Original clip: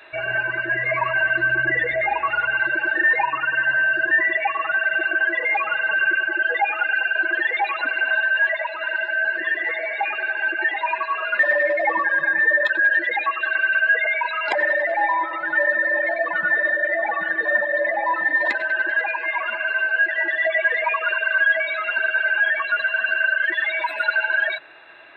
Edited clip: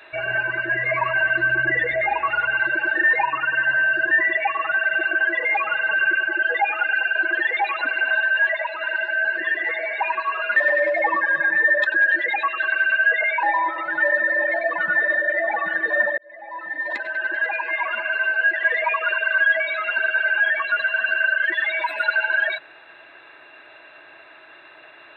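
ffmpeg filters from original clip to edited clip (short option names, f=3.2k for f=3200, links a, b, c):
-filter_complex "[0:a]asplit=5[a][b][c][d][e];[a]atrim=end=10.022[f];[b]atrim=start=10.848:end=14.262[g];[c]atrim=start=14.978:end=17.73,asetpts=PTS-STARTPTS,afade=t=out:st=2.748:d=0.004:c=hsin[h];[d]atrim=start=17.73:end=20.182,asetpts=PTS-STARTPTS,afade=t=in:d=1.5[i];[e]atrim=start=20.628[j];[f][g]acrossfade=d=0.004:c1=hsin:c2=hsin[k];[h][i]concat=n=2:v=0:a=1[l];[k][l]acrossfade=d=0.004:c1=hsin:c2=hsin[m];[m][j]acrossfade=d=0.004:c1=hsin:c2=hsin"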